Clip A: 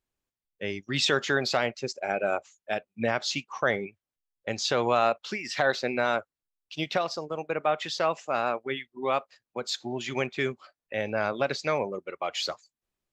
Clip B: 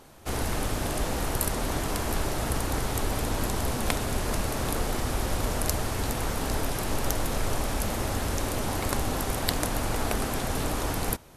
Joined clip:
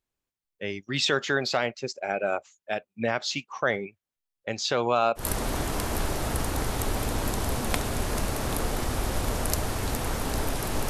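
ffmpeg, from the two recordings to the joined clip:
ffmpeg -i cue0.wav -i cue1.wav -filter_complex "[0:a]asettb=1/sr,asplit=3[link_01][link_02][link_03];[link_01]atrim=end=4.774[link_04];[link_02]atrim=start=4.77:end=5.29,asetpts=PTS-STARTPTS,afade=type=in:duration=0.004:curve=qsin,afade=type=out:start_time=0.516:duration=0.004:curve=qsin,asuperstop=centerf=1900:order=4:qfactor=3.1[link_05];[link_03]atrim=start=5.286[link_06];[link_04][link_05]acrossfade=duration=0.004:curve1=hsin:curve2=qsin[link_07];[link_07][link_06]acrossfade=duration=0.004:curve1=qsin:curve2=hsin,apad=whole_dur=10.89,atrim=end=10.89,atrim=end=5.29,asetpts=PTS-STARTPTS[link_08];[1:a]atrim=start=1.31:end=7.05,asetpts=PTS-STARTPTS[link_09];[link_08][link_09]acrossfade=duration=0.14:curve1=tri:curve2=tri" out.wav

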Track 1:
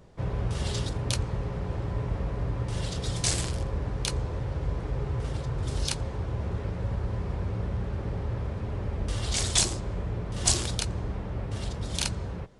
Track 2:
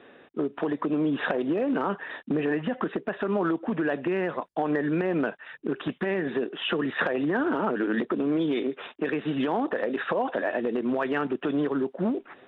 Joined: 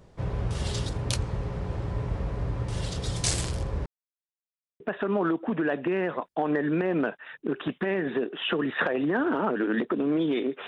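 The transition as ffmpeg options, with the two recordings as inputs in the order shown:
ffmpeg -i cue0.wav -i cue1.wav -filter_complex "[0:a]apad=whole_dur=10.67,atrim=end=10.67,asplit=2[link_01][link_02];[link_01]atrim=end=3.86,asetpts=PTS-STARTPTS,afade=type=out:start_time=3.856:duration=0.004:curve=hsin[link_03];[link_02]atrim=start=3.86:end=4.8,asetpts=PTS-STARTPTS,volume=0[link_04];[1:a]atrim=start=3:end=8.87,asetpts=PTS-STARTPTS,afade=type=in:duration=0.004:curve=hsin[link_05];[link_03][link_04][link_05]concat=n=3:v=0:a=1" out.wav

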